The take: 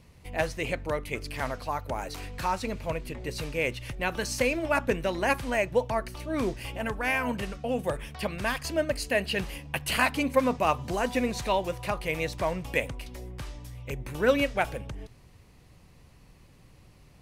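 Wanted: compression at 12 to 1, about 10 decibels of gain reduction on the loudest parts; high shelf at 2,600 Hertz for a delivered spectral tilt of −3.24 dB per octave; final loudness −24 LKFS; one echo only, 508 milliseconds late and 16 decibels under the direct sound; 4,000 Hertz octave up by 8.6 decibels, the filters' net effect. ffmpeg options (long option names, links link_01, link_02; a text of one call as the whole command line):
ffmpeg -i in.wav -af "highshelf=frequency=2600:gain=5.5,equalizer=frequency=4000:width_type=o:gain=7,acompressor=threshold=-26dB:ratio=12,aecho=1:1:508:0.158,volume=7.5dB" out.wav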